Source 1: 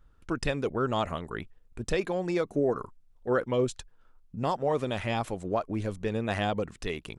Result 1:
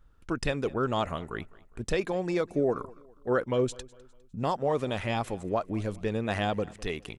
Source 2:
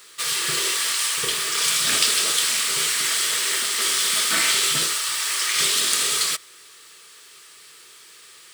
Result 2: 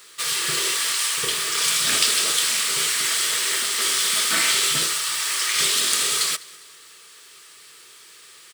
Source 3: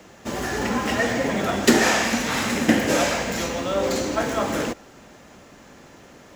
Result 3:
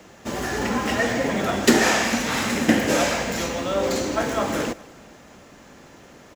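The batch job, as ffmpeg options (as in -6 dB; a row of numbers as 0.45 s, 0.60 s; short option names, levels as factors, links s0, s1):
-af "aecho=1:1:203|406|609:0.075|0.0307|0.0126"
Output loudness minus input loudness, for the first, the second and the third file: 0.0 LU, 0.0 LU, 0.0 LU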